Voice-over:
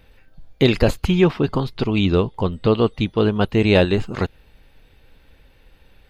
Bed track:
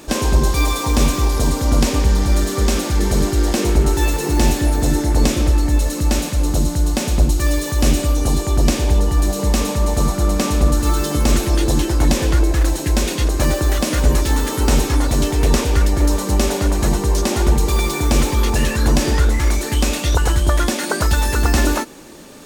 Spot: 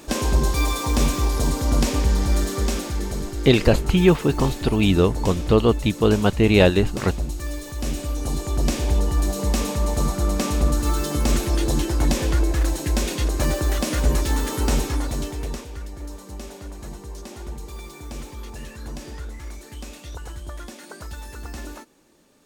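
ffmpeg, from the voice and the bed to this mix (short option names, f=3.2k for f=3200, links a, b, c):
-filter_complex "[0:a]adelay=2850,volume=0dB[a];[1:a]volume=3dB,afade=t=out:st=2.41:d=0.83:silence=0.398107,afade=t=in:st=7.8:d=1.17:silence=0.421697,afade=t=out:st=14.6:d=1.07:silence=0.188365[b];[a][b]amix=inputs=2:normalize=0"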